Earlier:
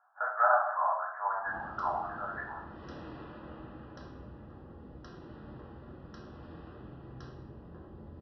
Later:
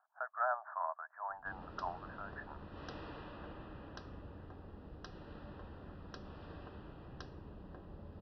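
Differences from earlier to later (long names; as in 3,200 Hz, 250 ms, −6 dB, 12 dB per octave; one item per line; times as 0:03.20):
background +7.5 dB
reverb: off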